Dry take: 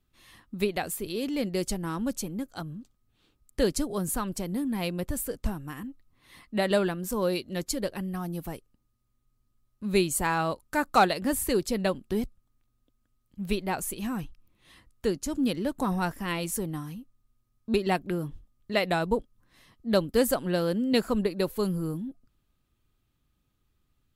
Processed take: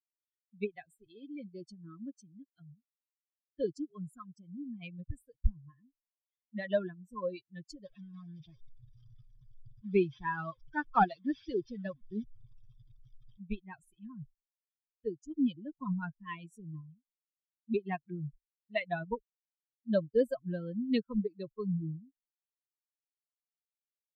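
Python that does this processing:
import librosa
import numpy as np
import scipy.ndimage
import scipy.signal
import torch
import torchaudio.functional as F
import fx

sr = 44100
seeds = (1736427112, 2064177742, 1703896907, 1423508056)

y = fx.notch_comb(x, sr, f0_hz=950.0, at=(1.3, 4.82), fade=0.02)
y = fx.delta_mod(y, sr, bps=32000, step_db=-30.5, at=(7.85, 13.4))
y = fx.bin_expand(y, sr, power=3.0)
y = scipy.signal.sosfilt(scipy.signal.butter(2, 2400.0, 'lowpass', fs=sr, output='sos'), y)
y = fx.low_shelf(y, sr, hz=86.0, db=6.5)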